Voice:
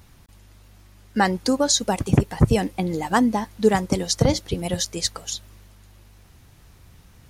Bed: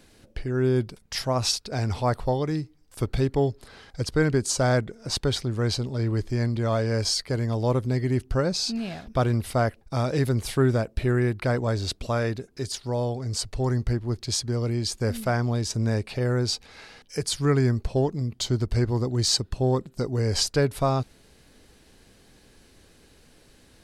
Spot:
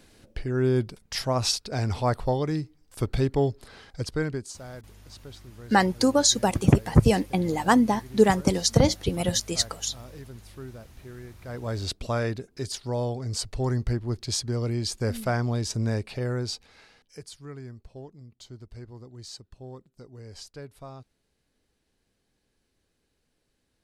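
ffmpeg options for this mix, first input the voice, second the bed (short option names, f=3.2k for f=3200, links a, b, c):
-filter_complex "[0:a]adelay=4550,volume=-0.5dB[a];[1:a]volume=18dB,afade=t=out:st=3.8:d=0.8:silence=0.105925,afade=t=in:st=11.44:d=0.44:silence=0.11885,afade=t=out:st=15.78:d=1.61:silence=0.125893[b];[a][b]amix=inputs=2:normalize=0"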